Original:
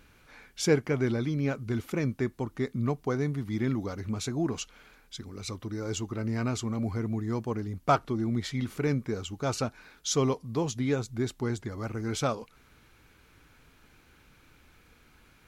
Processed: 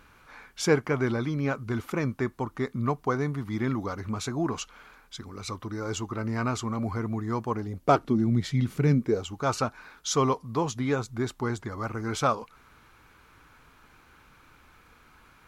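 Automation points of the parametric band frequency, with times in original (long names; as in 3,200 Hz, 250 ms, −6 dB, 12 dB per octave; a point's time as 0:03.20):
parametric band +9.5 dB 1.1 octaves
0:07.51 1,100 Hz
0:08.28 150 Hz
0:08.89 150 Hz
0:09.32 1,100 Hz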